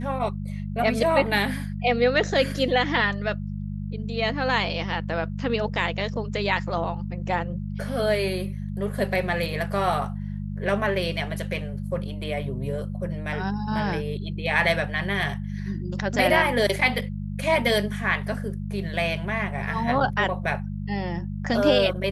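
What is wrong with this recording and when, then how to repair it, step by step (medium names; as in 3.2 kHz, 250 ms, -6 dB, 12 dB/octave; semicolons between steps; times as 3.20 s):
hum 50 Hz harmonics 4 -31 dBFS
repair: de-hum 50 Hz, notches 4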